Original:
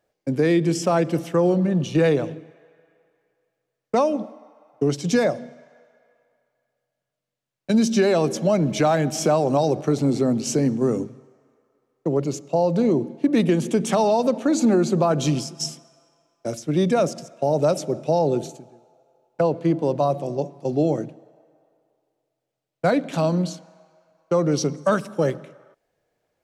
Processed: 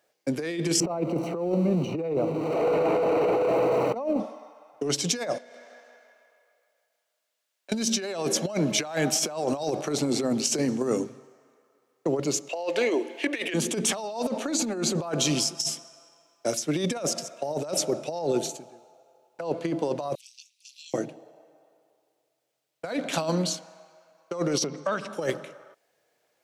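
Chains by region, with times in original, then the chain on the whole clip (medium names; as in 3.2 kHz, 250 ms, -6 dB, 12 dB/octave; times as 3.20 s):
0.80–4.20 s: jump at every zero crossing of -29.5 dBFS + boxcar filter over 26 samples + three bands compressed up and down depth 100%
5.38–7.72 s: Bessel high-pass 500 Hz + compression 4:1, threshold -47 dBFS + feedback delay 160 ms, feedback 43%, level -4 dB
12.49–13.54 s: high-pass 330 Hz 24 dB/octave + high-order bell 2.3 kHz +10.5 dB 1.2 oct + tape noise reduction on one side only encoder only
20.15–20.94 s: steep high-pass 2.5 kHz 48 dB/octave + AM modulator 220 Hz, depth 85%
24.64–25.13 s: low-pass 3.9 kHz + compression 4:1, threshold -26 dBFS
whole clip: high-pass 430 Hz 6 dB/octave; treble shelf 2 kHz +5.5 dB; compressor with a negative ratio -25 dBFS, ratio -0.5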